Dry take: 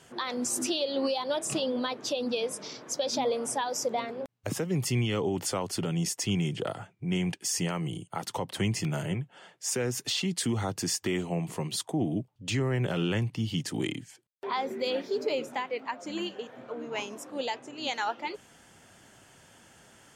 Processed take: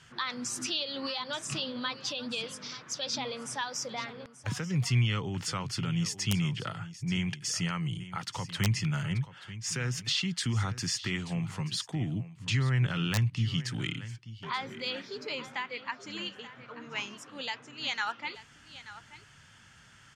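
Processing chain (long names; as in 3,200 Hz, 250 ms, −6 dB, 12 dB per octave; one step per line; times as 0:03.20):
drawn EQ curve 130 Hz 0 dB, 350 Hz −15 dB, 690 Hz −15 dB, 1,300 Hz −1 dB, 5,300 Hz −3 dB, 15,000 Hz −20 dB
single-tap delay 883 ms −15 dB
wrap-around overflow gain 20.5 dB
level +3.5 dB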